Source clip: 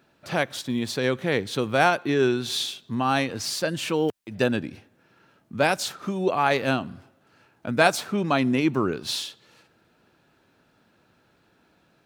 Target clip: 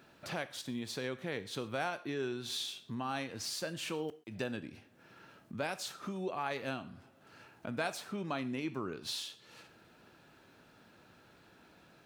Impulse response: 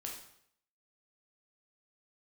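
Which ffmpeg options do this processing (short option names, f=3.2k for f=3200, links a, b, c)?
-filter_complex "[0:a]acompressor=threshold=-50dB:ratio=2,asplit=2[a][b];[1:a]atrim=start_sample=2205,atrim=end_sample=6174,lowshelf=f=420:g=-11[c];[b][c]afir=irnorm=-1:irlink=0,volume=-5dB[d];[a][d]amix=inputs=2:normalize=0"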